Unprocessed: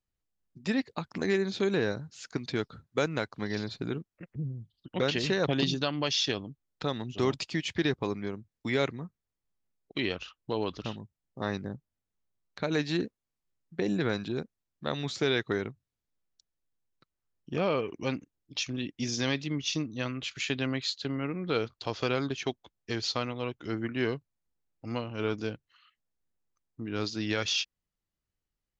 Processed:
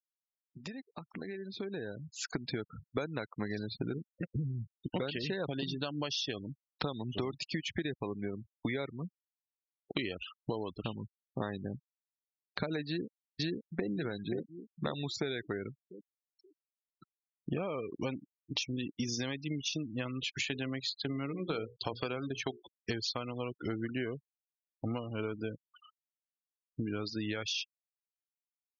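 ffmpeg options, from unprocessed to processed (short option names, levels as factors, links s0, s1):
-filter_complex "[0:a]asplit=2[s0][s1];[s1]afade=t=in:st=12.86:d=0.01,afade=t=out:st=13.88:d=0.01,aecho=0:1:530|1060|1590|2120|2650:0.749894|0.262463|0.091862|0.0321517|0.0112531[s2];[s0][s2]amix=inputs=2:normalize=0,asettb=1/sr,asplit=3[s3][s4][s5];[s3]atrim=end=20.334[s6];[s4]atrim=start=20.33:end=22.91,asetpts=PTS-STARTPTS,afade=t=in:d=0.004:c=qsin,afade=t=out:st=2.576:d=0.004:c=qsin,bandreject=f=60:t=h:w=6,bandreject=f=120:t=h:w=6,bandreject=f=180:t=h:w=6,bandreject=f=240:t=h:w=6,bandreject=f=300:t=h:w=6,bandreject=f=360:t=h:w=6,bandreject=f=420:t=h:w=6,bandreject=f=480:t=h:w=6,bandreject=f=540:t=h:w=6,bandreject=f=600:t=h:w=6[s7];[s5]atrim=start=22.906[s8];[s6][s7]acrossfade=d=0.004:c1=hsin:c2=qsin[s9];[s9][s8]acrossfade=d=0.004:c1=qsin:c2=hsin,acompressor=threshold=0.00794:ratio=16,afftfilt=real='re*gte(hypot(re,im),0.00355)':imag='im*gte(hypot(re,im),0.00355)':win_size=1024:overlap=0.75,dynaudnorm=f=170:g=21:m=3.16"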